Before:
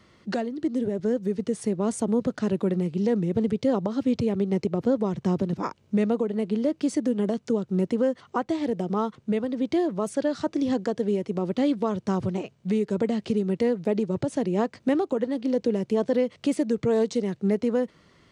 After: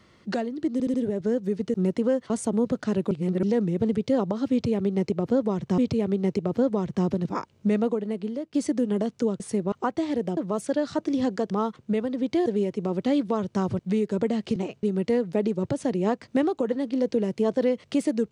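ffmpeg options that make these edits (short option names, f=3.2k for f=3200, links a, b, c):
-filter_complex "[0:a]asplit=18[a][b][c][d][e][f][g][h][i][j][k][l][m][n][o][p][q][r];[a]atrim=end=0.802[s];[b]atrim=start=0.728:end=0.802[t];[c]atrim=start=0.728:end=0.802[u];[d]atrim=start=0.728:end=1.532[v];[e]atrim=start=7.678:end=8.242[w];[f]atrim=start=1.848:end=2.662[x];[g]atrim=start=2.658:end=2.982,asetpts=PTS-STARTPTS,areverse[y];[h]atrim=start=2.978:end=5.332[z];[i]atrim=start=4.058:end=6.82,asetpts=PTS-STARTPTS,afade=t=out:st=2.112:d=0.65:silence=0.251189[aa];[j]atrim=start=6.82:end=7.682,asetpts=PTS-STARTPTS,afade=t=in:d=0.004:c=hsin:silence=0.251189[ab];[k]atrim=start=1.528:end=1.852[ac];[l]atrim=start=8.238:end=8.892[ad];[m]atrim=start=9.848:end=10.982[ae];[n]atrim=start=8.888:end=9.852[af];[o]atrim=start=10.978:end=12.312[ag];[p]atrim=start=12.578:end=13.352[ah];[q]atrim=start=12.308:end=12.582[ai];[r]atrim=start=13.348[aj];[s][t]acrossfade=d=0.004:c1=hsin:c2=hsin[ak];[ak][u]acrossfade=d=0.004:c1=hsin:c2=hsin[al];[al][v]acrossfade=d=0.004:c1=hsin:c2=hsin[am];[am][w]acrossfade=d=0.004:c1=hsin:c2=hsin[an];[an][x]acrossfade=d=0.004:c1=hsin:c2=hsin[ao];[ao][y]acrossfade=d=0.004:c1=hsin:c2=hsin[ap];[ap][z]acrossfade=d=0.004:c1=hsin:c2=hsin[aq];[aa][ab]concat=n=2:v=0:a=1[ar];[aq][ar]acrossfade=d=0.004:c1=hsin:c2=hsin[as];[as][ac]acrossfade=d=0.004:c1=hsin:c2=hsin[at];[at][ad]acrossfade=d=0.004:c1=hsin:c2=hsin[au];[au][ae]acrossfade=d=0.004:c1=hsin:c2=hsin[av];[av][af]acrossfade=d=0.004:c1=hsin:c2=hsin[aw];[aw][ag]acrossfade=d=0.004:c1=hsin:c2=hsin[ax];[ax][ah]acrossfade=d=0.004:c1=hsin:c2=hsin[ay];[ay][ai]acrossfade=d=0.004:c1=hsin:c2=hsin[az];[az][aj]acrossfade=d=0.004:c1=hsin:c2=hsin"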